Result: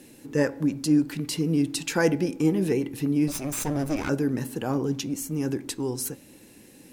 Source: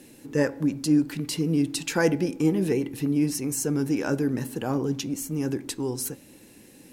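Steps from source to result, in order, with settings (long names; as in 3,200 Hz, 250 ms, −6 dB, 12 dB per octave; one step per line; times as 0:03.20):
0:03.28–0:04.09: lower of the sound and its delayed copy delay 0.81 ms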